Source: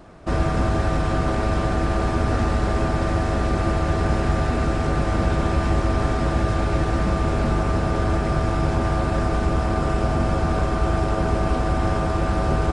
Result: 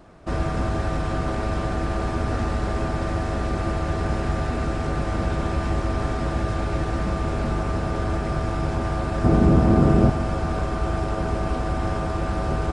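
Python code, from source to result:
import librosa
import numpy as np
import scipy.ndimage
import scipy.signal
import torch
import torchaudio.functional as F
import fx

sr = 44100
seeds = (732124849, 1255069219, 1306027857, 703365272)

y = fx.peak_eq(x, sr, hz=200.0, db=14.0, octaves=2.8, at=(9.24, 10.1))
y = F.gain(torch.from_numpy(y), -3.5).numpy()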